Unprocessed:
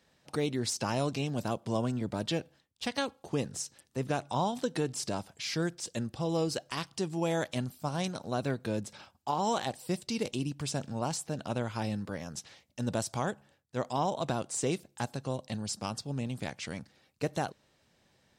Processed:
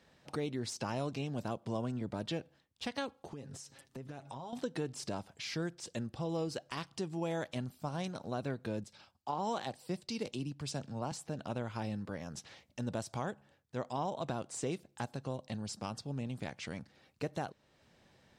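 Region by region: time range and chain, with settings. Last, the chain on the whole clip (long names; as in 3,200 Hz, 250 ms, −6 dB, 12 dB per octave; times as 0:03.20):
0:03.32–0:04.53: comb filter 7.4 ms, depth 47% + downward compressor 5 to 1, threshold −42 dBFS
0:08.84–0:11.12: parametric band 4,600 Hz +3.5 dB 0.39 octaves + multiband upward and downward expander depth 40%
whole clip: high-shelf EQ 5,100 Hz −8 dB; downward compressor 1.5 to 1, threshold −53 dBFS; level +3.5 dB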